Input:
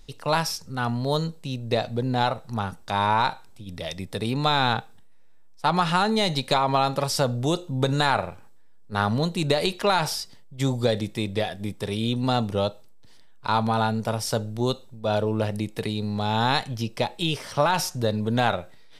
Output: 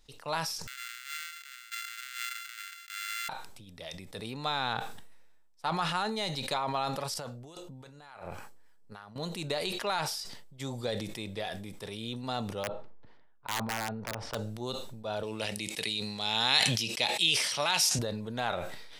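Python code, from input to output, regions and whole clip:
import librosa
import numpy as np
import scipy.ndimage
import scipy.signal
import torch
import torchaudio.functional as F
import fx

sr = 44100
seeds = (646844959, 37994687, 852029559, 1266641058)

y = fx.chain(x, sr, fx.sample_sort(block=64),
    fx.steep_highpass(hz=1400.0, slope=72),
    fx.resample_bad(factor=4, down='filtered', up='hold'), at=(0.67, 3.29))
y = fx.chain(y, sr, fx.notch(hz=3700.0, q=12.0),
    fx.over_compress(threshold_db=-34.0, ratio=-1.0),
    fx.harmonic_tremolo(hz=3.5, depth_pct=50, crossover_hz=810.0), at=(7.14, 9.16))
y = fx.chain(y, sr, fx.lowpass(hz=1500.0, slope=12),
    fx.overflow_wrap(gain_db=15.5), at=(12.63, 14.35))
y = fx.chain(y, sr, fx.highpass(hz=110.0, slope=12),
    fx.band_shelf(hz=4700.0, db=12.0, octaves=2.8), at=(15.23, 17.99))
y = fx.low_shelf(y, sr, hz=370.0, db=-8.0)
y = fx.sustainer(y, sr, db_per_s=37.0)
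y = y * librosa.db_to_amplitude(-9.0)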